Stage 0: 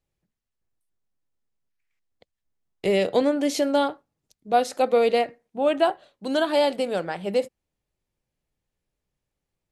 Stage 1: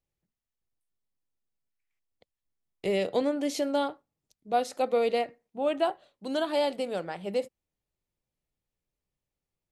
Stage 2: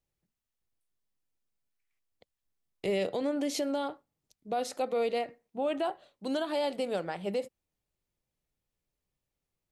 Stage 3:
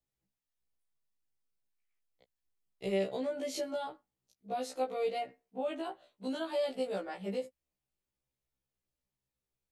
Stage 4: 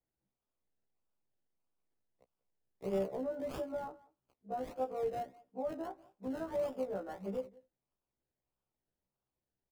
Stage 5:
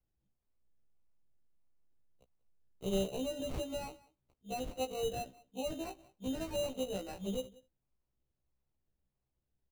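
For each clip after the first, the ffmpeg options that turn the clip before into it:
ffmpeg -i in.wav -af "equalizer=frequency=1600:width_type=o:width=0.2:gain=-3.5,volume=-6dB" out.wav
ffmpeg -i in.wav -af "alimiter=limit=-23.5dB:level=0:latency=1:release=96,volume=1dB" out.wav
ffmpeg -i in.wav -af "afftfilt=real='re*1.73*eq(mod(b,3),0)':imag='im*1.73*eq(mod(b,3),0)':win_size=2048:overlap=0.75,volume=-2.5dB" out.wav
ffmpeg -i in.wav -filter_complex "[0:a]aecho=1:1:186:0.075,acrossover=split=220|1600[link_01][link_02][link_03];[link_03]acrusher=samples=30:mix=1:aa=0.000001:lfo=1:lforange=18:lforate=1.6[link_04];[link_01][link_02][link_04]amix=inputs=3:normalize=0,volume=-2.5dB" out.wav
ffmpeg -i in.wav -af "aemphasis=mode=reproduction:type=bsi,acrusher=samples=13:mix=1:aa=0.000001,volume=-2dB" out.wav

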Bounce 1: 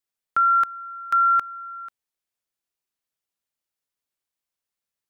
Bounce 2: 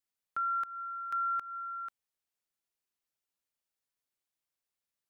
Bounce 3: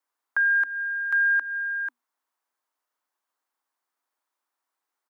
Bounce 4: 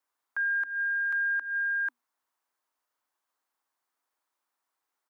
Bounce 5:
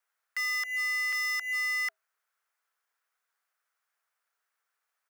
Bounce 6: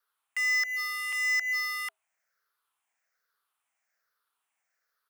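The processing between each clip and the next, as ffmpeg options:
ffmpeg -i in.wav -af "alimiter=level_in=1dB:limit=-24dB:level=0:latency=1:release=168,volume=-1dB,volume=-3.5dB" out.wav
ffmpeg -i in.wav -af "firequalizer=gain_entry='entry(240,0);entry(720,11);entry(2300,-4)':delay=0.05:min_phase=1,afreqshift=240,volume=6dB" out.wav
ffmpeg -i in.wav -af "alimiter=level_in=0.5dB:limit=-24dB:level=0:latency=1:release=169,volume=-0.5dB" out.wav
ffmpeg -i in.wav -filter_complex "[0:a]asplit=2[link_01][link_02];[link_02]acrusher=samples=11:mix=1:aa=0.000001,volume=-9dB[link_03];[link_01][link_03]amix=inputs=2:normalize=0,aeval=exprs='0.0473*(abs(mod(val(0)/0.0473+3,4)-2)-1)':channel_layout=same,afreqshift=400" out.wav
ffmpeg -i in.wav -af "afftfilt=real='re*pow(10,11/40*sin(2*PI*(0.6*log(max(b,1)*sr/1024/100)/log(2)-(-1.2)*(pts-256)/sr)))':imag='im*pow(10,11/40*sin(2*PI*(0.6*log(max(b,1)*sr/1024/100)/log(2)-(-1.2)*(pts-256)/sr)))':win_size=1024:overlap=0.75" out.wav

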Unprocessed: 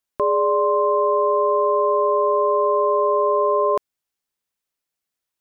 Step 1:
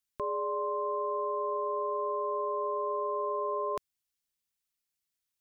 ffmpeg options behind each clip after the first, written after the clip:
ffmpeg -i in.wav -af "equalizer=frequency=600:width_type=o:width=2.9:gain=-11,alimiter=limit=-23.5dB:level=0:latency=1:release=17,volume=-1.5dB" out.wav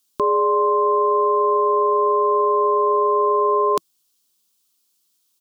ffmpeg -i in.wav -af "firequalizer=gain_entry='entry(120,0);entry(180,10);entry(330,14);entry(640,3);entry(1100,11);entry(1900,-1);entry(3100,12);entry(4300,14)':delay=0.05:min_phase=1,volume=5dB" out.wav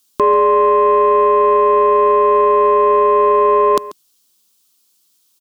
ffmpeg -i in.wav -af "acontrast=89,aecho=1:1:138:0.133" out.wav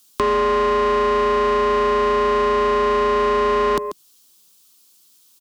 ffmpeg -i in.wav -filter_complex "[0:a]acrossover=split=170|910[link_01][link_02][link_03];[link_02]asoftclip=type=tanh:threshold=-24.5dB[link_04];[link_03]acompressor=threshold=-30dB:ratio=5[link_05];[link_01][link_04][link_05]amix=inputs=3:normalize=0,volume=5dB" out.wav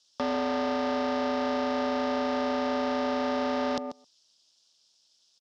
ffmpeg -i in.wav -filter_complex "[0:a]highpass=450,equalizer=frequency=480:width_type=q:width=4:gain=6,equalizer=frequency=730:width_type=q:width=4:gain=9,equalizer=frequency=1100:width_type=q:width=4:gain=-9,equalizer=frequency=2200:width_type=q:width=4:gain=-7,equalizer=frequency=3500:width_type=q:width=4:gain=4,equalizer=frequency=5200:width_type=q:width=4:gain=9,lowpass=frequency=6200:width=0.5412,lowpass=frequency=6200:width=1.3066,asplit=2[link_01][link_02];[link_02]adelay=128.3,volume=-23dB,highshelf=frequency=4000:gain=-2.89[link_03];[link_01][link_03]amix=inputs=2:normalize=0,aeval=exprs='val(0)*sin(2*PI*160*n/s)':channel_layout=same,volume=-5.5dB" out.wav

